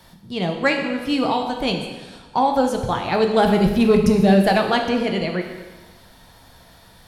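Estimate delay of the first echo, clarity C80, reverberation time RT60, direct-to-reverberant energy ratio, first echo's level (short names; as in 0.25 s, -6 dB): none, 7.5 dB, 1.3 s, 3.0 dB, none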